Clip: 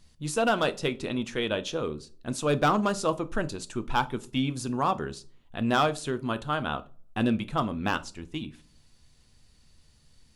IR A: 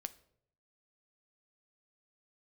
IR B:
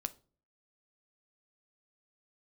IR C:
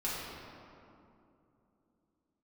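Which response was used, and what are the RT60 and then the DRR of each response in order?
B; 0.70, 0.40, 2.8 seconds; 12.0, 10.5, −9.0 decibels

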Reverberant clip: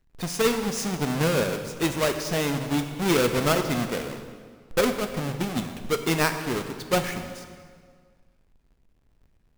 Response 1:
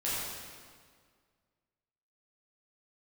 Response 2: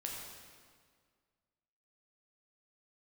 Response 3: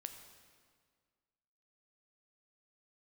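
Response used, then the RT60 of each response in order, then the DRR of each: 3; 1.9, 1.9, 1.8 seconds; −10.0, −2.0, 6.5 decibels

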